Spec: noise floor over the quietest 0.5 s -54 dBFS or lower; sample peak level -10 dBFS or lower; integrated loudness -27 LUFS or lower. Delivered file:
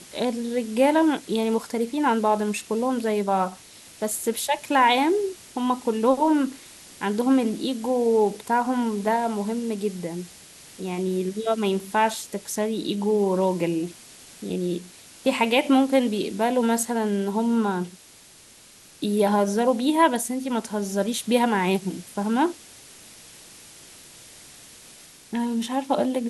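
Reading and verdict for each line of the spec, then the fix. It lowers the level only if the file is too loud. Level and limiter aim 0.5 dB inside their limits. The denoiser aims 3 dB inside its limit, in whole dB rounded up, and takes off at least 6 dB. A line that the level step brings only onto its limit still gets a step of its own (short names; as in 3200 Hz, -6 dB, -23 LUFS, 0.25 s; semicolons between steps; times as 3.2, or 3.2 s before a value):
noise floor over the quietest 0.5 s -50 dBFS: fail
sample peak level -6.0 dBFS: fail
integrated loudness -24.0 LUFS: fail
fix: denoiser 6 dB, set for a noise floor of -50 dBFS; gain -3.5 dB; limiter -10.5 dBFS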